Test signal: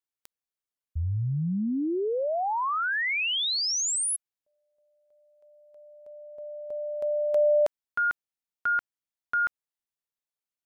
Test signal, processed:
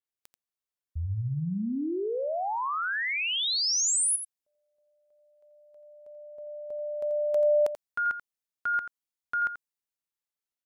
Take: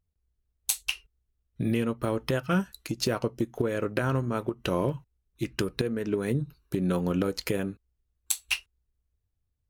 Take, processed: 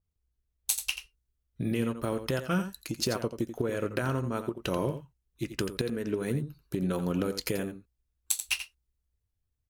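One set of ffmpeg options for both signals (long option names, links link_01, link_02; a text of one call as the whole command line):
ffmpeg -i in.wav -filter_complex "[0:a]asplit=2[link_01][link_02];[link_02]aecho=0:1:86:0.299[link_03];[link_01][link_03]amix=inputs=2:normalize=0,adynamicequalizer=threshold=0.00708:dfrequency=4200:dqfactor=0.7:tfrequency=4200:tqfactor=0.7:attack=5:release=100:ratio=0.375:range=2.5:mode=boostabove:tftype=highshelf,volume=-3dB" out.wav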